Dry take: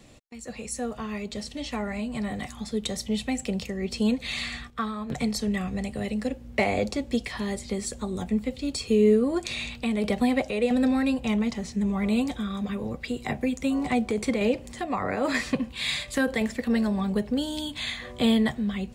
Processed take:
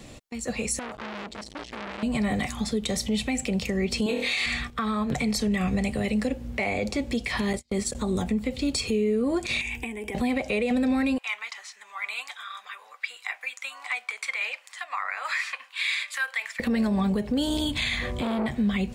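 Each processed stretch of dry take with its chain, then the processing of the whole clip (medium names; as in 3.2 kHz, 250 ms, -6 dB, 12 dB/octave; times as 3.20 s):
0.79–2.03 s: treble shelf 10 kHz -6.5 dB + level held to a coarse grid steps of 9 dB + transformer saturation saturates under 2.4 kHz
4.06–4.46 s: resonant low shelf 270 Hz -11.5 dB, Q 1.5 + flutter echo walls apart 4.2 m, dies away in 0.46 s
7.53–7.95 s: gate -35 dBFS, range -41 dB + tape noise reduction on one side only encoder only
9.61–10.15 s: treble shelf 4.6 kHz +6.5 dB + compression 8:1, threshold -34 dBFS + static phaser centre 860 Hz, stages 8
11.18–16.60 s: high-pass 1.2 kHz 24 dB/octave + treble shelf 2.5 kHz -10 dB
17.47–18.55 s: bass shelf 160 Hz +8.5 dB + transformer saturation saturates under 700 Hz
whole clip: dynamic bell 2.3 kHz, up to +7 dB, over -51 dBFS, Q 5; compression 2.5:1, threshold -29 dBFS; peak limiter -25 dBFS; trim +7.5 dB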